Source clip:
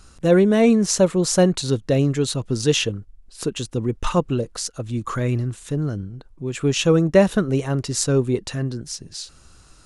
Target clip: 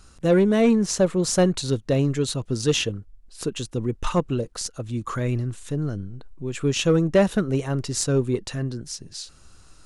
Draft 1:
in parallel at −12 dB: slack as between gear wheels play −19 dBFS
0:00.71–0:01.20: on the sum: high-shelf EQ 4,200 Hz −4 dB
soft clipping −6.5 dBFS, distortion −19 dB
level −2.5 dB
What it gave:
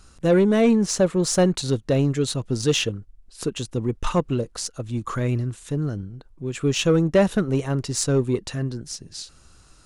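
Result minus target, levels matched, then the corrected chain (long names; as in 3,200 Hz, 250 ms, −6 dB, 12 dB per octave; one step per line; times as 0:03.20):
slack as between gear wheels: distortion −11 dB
in parallel at −12 dB: slack as between gear wheels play −9.5 dBFS
0:00.71–0:01.20: on the sum: high-shelf EQ 4,200 Hz −4 dB
soft clipping −6.5 dBFS, distortion −19 dB
level −2.5 dB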